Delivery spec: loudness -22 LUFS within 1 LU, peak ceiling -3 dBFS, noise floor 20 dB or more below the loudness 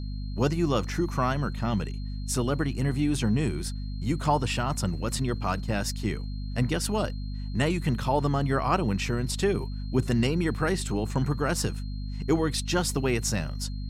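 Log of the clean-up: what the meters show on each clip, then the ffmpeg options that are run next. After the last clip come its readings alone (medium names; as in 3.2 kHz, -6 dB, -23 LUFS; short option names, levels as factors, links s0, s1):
hum 50 Hz; highest harmonic 250 Hz; hum level -31 dBFS; steady tone 4.2 kHz; tone level -51 dBFS; loudness -28.0 LUFS; peak level -10.5 dBFS; loudness target -22.0 LUFS
-> -af "bandreject=f=50:t=h:w=4,bandreject=f=100:t=h:w=4,bandreject=f=150:t=h:w=4,bandreject=f=200:t=h:w=4,bandreject=f=250:t=h:w=4"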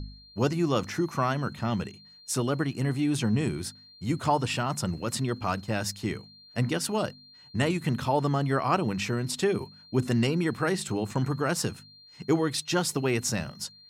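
hum not found; steady tone 4.2 kHz; tone level -51 dBFS
-> -af "bandreject=f=4200:w=30"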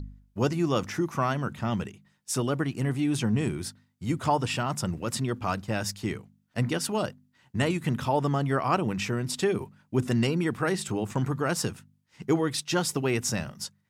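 steady tone not found; loudness -28.5 LUFS; peak level -11.0 dBFS; loudness target -22.0 LUFS
-> -af "volume=2.11"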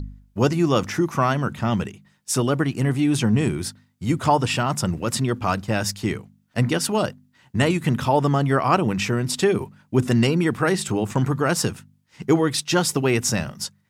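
loudness -22.0 LUFS; peak level -4.5 dBFS; noise floor -63 dBFS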